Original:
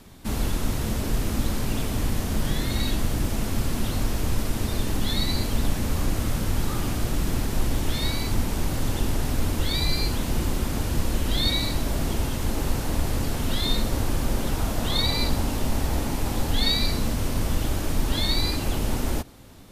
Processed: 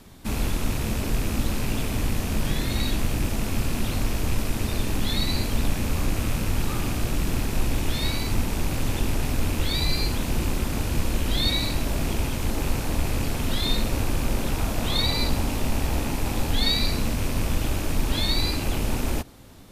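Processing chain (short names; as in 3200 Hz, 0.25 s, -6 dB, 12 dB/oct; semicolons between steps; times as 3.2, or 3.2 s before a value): rattling part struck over -31 dBFS, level -27 dBFS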